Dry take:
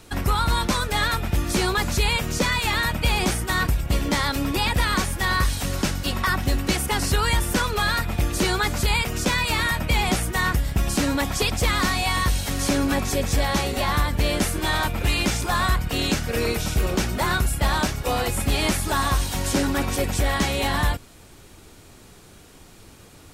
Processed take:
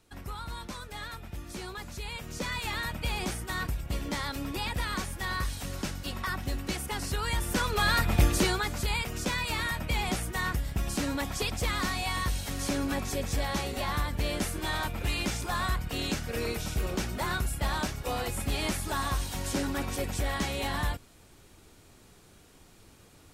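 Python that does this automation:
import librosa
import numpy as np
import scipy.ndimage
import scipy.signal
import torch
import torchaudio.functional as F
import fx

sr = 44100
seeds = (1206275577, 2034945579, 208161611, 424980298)

y = fx.gain(x, sr, db=fx.line((2.03, -17.5), (2.56, -10.5), (7.19, -10.5), (8.23, 1.0), (8.65, -8.5)))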